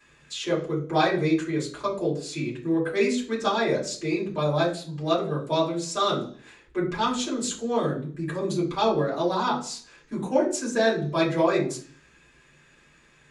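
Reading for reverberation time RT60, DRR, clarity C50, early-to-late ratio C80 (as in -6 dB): 0.50 s, -7.0 dB, 9.0 dB, 14.5 dB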